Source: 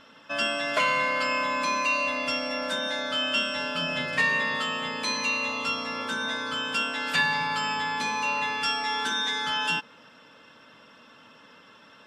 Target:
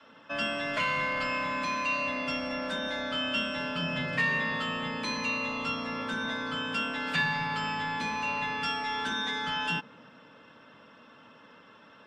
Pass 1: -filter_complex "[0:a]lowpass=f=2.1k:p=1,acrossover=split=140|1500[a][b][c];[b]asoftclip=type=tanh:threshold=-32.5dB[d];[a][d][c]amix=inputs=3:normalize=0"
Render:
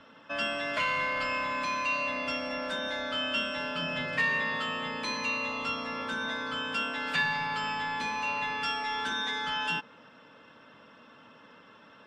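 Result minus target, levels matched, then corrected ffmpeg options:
125 Hz band -6.0 dB
-filter_complex "[0:a]lowpass=f=2.1k:p=1,adynamicequalizer=threshold=0.00251:dfrequency=160:dqfactor=0.75:tfrequency=160:tqfactor=0.75:attack=5:release=100:ratio=0.417:range=3.5:mode=boostabove:tftype=bell,acrossover=split=140|1500[a][b][c];[b]asoftclip=type=tanh:threshold=-32.5dB[d];[a][d][c]amix=inputs=3:normalize=0"

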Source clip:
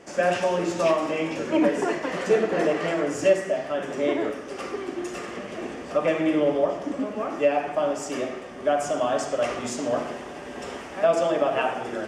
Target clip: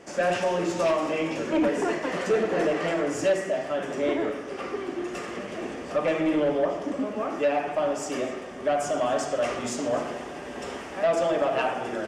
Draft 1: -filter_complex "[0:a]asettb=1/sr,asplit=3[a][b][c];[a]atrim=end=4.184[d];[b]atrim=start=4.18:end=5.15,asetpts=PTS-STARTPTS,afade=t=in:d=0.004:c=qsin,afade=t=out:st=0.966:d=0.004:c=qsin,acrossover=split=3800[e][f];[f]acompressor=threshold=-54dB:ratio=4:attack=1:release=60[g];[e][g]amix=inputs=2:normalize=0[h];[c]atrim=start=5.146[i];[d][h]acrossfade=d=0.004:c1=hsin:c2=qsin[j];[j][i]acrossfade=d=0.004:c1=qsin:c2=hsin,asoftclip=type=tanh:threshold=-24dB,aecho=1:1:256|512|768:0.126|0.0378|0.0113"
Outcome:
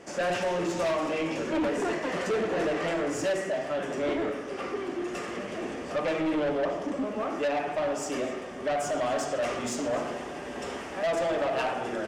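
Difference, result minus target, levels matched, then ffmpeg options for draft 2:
soft clip: distortion +7 dB
-filter_complex "[0:a]asettb=1/sr,asplit=3[a][b][c];[a]atrim=end=4.184[d];[b]atrim=start=4.18:end=5.15,asetpts=PTS-STARTPTS,afade=t=in:d=0.004:c=qsin,afade=t=out:st=0.966:d=0.004:c=qsin,acrossover=split=3800[e][f];[f]acompressor=threshold=-54dB:ratio=4:attack=1:release=60[g];[e][g]amix=inputs=2:normalize=0[h];[c]atrim=start=5.146[i];[d][h]acrossfade=d=0.004:c1=hsin:c2=qsin[j];[j][i]acrossfade=d=0.004:c1=qsin:c2=hsin,asoftclip=type=tanh:threshold=-16.5dB,aecho=1:1:256|512|768:0.126|0.0378|0.0113"

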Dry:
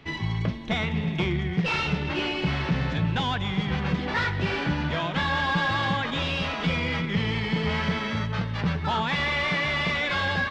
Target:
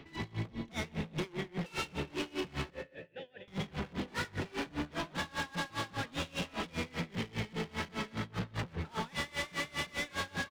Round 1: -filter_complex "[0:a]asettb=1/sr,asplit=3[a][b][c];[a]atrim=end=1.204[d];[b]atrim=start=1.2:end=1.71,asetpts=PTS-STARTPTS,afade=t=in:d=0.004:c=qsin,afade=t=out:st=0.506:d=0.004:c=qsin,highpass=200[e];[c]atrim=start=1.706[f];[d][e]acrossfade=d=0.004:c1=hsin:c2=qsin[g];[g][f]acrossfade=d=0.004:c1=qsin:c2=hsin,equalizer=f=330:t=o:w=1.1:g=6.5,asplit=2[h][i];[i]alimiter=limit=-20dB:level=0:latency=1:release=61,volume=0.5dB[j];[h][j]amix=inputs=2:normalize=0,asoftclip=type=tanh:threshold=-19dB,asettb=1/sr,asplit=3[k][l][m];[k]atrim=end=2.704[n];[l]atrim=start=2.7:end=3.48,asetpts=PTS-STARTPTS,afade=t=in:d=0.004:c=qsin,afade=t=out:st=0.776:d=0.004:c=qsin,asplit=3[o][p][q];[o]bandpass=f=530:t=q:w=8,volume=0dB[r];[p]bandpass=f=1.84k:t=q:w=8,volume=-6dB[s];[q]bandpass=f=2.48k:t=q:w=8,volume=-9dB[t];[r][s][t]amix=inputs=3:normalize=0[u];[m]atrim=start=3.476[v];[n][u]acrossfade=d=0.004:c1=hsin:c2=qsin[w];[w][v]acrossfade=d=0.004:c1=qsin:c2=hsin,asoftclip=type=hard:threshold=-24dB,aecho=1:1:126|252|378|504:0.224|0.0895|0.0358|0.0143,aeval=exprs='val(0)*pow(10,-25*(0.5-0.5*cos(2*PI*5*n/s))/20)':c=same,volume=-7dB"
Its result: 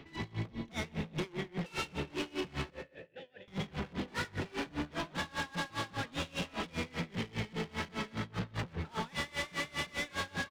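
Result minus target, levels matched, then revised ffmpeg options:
soft clip: distortion +15 dB
-filter_complex "[0:a]asettb=1/sr,asplit=3[a][b][c];[a]atrim=end=1.204[d];[b]atrim=start=1.2:end=1.71,asetpts=PTS-STARTPTS,afade=t=in:d=0.004:c=qsin,afade=t=out:st=0.506:d=0.004:c=qsin,highpass=200[e];[c]atrim=start=1.706[f];[d][e]acrossfade=d=0.004:c1=hsin:c2=qsin[g];[g][f]acrossfade=d=0.004:c1=qsin:c2=hsin,equalizer=f=330:t=o:w=1.1:g=6.5,asplit=2[h][i];[i]alimiter=limit=-20dB:level=0:latency=1:release=61,volume=0.5dB[j];[h][j]amix=inputs=2:normalize=0,asoftclip=type=tanh:threshold=-8.5dB,asettb=1/sr,asplit=3[k][l][m];[k]atrim=end=2.704[n];[l]atrim=start=2.7:end=3.48,asetpts=PTS-STARTPTS,afade=t=in:d=0.004:c=qsin,afade=t=out:st=0.776:d=0.004:c=qsin,asplit=3[o][p][q];[o]bandpass=f=530:t=q:w=8,volume=0dB[r];[p]bandpass=f=1.84k:t=q:w=8,volume=-6dB[s];[q]bandpass=f=2.48k:t=q:w=8,volume=-9dB[t];[r][s][t]amix=inputs=3:normalize=0[u];[m]atrim=start=3.476[v];[n][u]acrossfade=d=0.004:c1=hsin:c2=qsin[w];[w][v]acrossfade=d=0.004:c1=qsin:c2=hsin,asoftclip=type=hard:threshold=-24dB,aecho=1:1:126|252|378|504:0.224|0.0895|0.0358|0.0143,aeval=exprs='val(0)*pow(10,-25*(0.5-0.5*cos(2*PI*5*n/s))/20)':c=same,volume=-7dB"

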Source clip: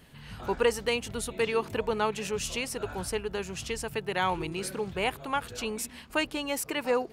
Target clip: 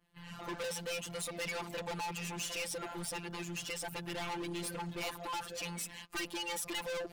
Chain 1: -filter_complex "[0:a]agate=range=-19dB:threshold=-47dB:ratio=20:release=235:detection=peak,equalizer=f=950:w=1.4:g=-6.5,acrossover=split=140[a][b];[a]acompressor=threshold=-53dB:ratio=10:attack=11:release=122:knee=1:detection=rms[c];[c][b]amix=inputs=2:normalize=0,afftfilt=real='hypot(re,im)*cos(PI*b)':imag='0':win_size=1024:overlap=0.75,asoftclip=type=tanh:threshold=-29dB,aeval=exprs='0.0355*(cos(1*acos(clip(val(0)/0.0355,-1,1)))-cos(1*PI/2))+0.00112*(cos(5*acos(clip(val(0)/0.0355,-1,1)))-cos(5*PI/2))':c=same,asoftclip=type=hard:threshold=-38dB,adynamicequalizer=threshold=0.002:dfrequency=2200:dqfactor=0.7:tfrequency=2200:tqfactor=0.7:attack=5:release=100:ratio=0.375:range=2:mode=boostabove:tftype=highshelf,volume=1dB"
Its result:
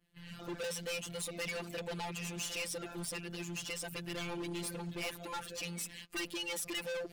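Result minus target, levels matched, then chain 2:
1000 Hz band -4.5 dB
-filter_complex "[0:a]agate=range=-19dB:threshold=-47dB:ratio=20:release=235:detection=peak,equalizer=f=950:w=1.4:g=4,acrossover=split=140[a][b];[a]acompressor=threshold=-53dB:ratio=10:attack=11:release=122:knee=1:detection=rms[c];[c][b]amix=inputs=2:normalize=0,afftfilt=real='hypot(re,im)*cos(PI*b)':imag='0':win_size=1024:overlap=0.75,asoftclip=type=tanh:threshold=-29dB,aeval=exprs='0.0355*(cos(1*acos(clip(val(0)/0.0355,-1,1)))-cos(1*PI/2))+0.00112*(cos(5*acos(clip(val(0)/0.0355,-1,1)))-cos(5*PI/2))':c=same,asoftclip=type=hard:threshold=-38dB,adynamicequalizer=threshold=0.002:dfrequency=2200:dqfactor=0.7:tfrequency=2200:tqfactor=0.7:attack=5:release=100:ratio=0.375:range=2:mode=boostabove:tftype=highshelf,volume=1dB"

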